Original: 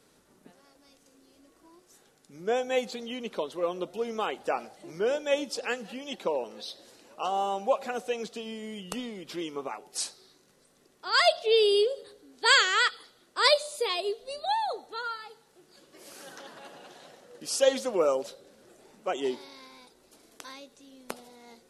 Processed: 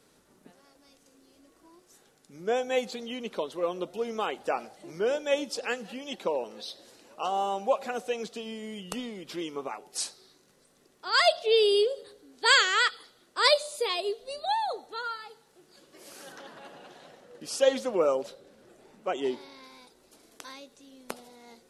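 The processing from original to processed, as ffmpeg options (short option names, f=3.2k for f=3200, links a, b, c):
-filter_complex "[0:a]asettb=1/sr,asplit=3[a][b][c];[a]atrim=end=16.324[d];[b]atrim=start=16.32:end=19.64,asetpts=PTS-STARTPTS,afade=t=in:d=0.004:c=qsin,afade=t=out:st=3.316:d=0.004:c=qsin,bass=f=250:g=2,treble=f=4k:g=-5[e];[c]atrim=start=19.636[f];[d][e]acrossfade=d=0.004:c1=hsin:c2=qsin[g];[g][f]acrossfade=d=0.004:c1=qsin:c2=hsin"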